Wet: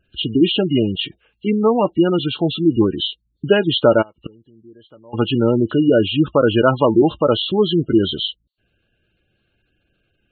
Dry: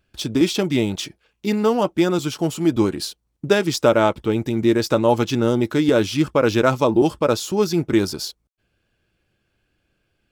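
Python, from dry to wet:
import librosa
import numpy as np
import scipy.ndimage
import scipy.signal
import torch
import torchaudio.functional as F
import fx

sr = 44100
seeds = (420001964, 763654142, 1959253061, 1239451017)

y = fx.freq_compress(x, sr, knee_hz=2700.0, ratio=4.0)
y = fx.gate_flip(y, sr, shuts_db=-19.0, range_db=-30, at=(4.01, 5.13), fade=0.02)
y = fx.spec_gate(y, sr, threshold_db=-20, keep='strong')
y = F.gain(torch.from_numpy(y), 3.0).numpy()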